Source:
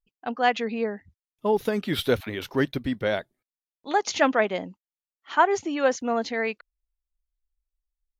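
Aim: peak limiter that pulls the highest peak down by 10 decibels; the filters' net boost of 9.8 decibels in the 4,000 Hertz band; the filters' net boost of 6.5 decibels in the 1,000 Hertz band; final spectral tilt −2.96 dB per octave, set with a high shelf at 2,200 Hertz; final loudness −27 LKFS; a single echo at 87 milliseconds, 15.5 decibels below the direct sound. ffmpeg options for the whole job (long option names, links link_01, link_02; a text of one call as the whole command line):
ffmpeg -i in.wav -af "equalizer=frequency=1000:width_type=o:gain=7,highshelf=frequency=2200:gain=6.5,equalizer=frequency=4000:width_type=o:gain=6,alimiter=limit=-11dB:level=0:latency=1,aecho=1:1:87:0.168,volume=-3dB" out.wav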